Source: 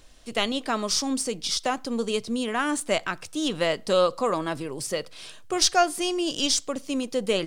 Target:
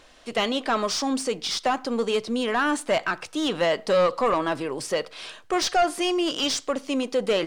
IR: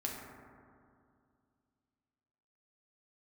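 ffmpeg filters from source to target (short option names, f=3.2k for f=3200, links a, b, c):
-filter_complex "[0:a]asplit=2[a][b];[b]highpass=f=720:p=1,volume=18dB,asoftclip=type=tanh:threshold=-7dB[c];[a][c]amix=inputs=2:normalize=0,lowpass=f=1.8k:p=1,volume=-6dB,asoftclip=type=tanh:threshold=-11dB,asplit=2[d][e];[1:a]atrim=start_sample=2205,afade=t=out:st=0.17:d=0.01,atrim=end_sample=7938[f];[e][f]afir=irnorm=-1:irlink=0,volume=-23dB[g];[d][g]amix=inputs=2:normalize=0,volume=-2.5dB"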